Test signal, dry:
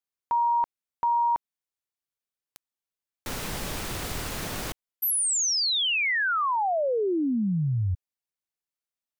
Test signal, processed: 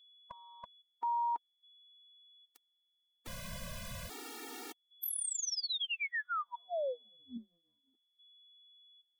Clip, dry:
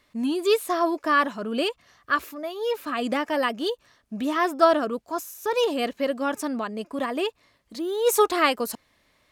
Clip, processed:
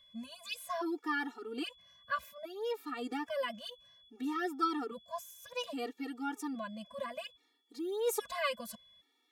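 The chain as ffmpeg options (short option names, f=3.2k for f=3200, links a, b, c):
-af "aeval=exprs='val(0)+0.00316*sin(2*PI*3400*n/s)':c=same,afftfilt=real='re*gt(sin(2*PI*0.61*pts/sr)*(1-2*mod(floor(b*sr/1024/240),2)),0)':imag='im*gt(sin(2*PI*0.61*pts/sr)*(1-2*mod(floor(b*sr/1024/240),2)),0)':win_size=1024:overlap=0.75,volume=-9dB"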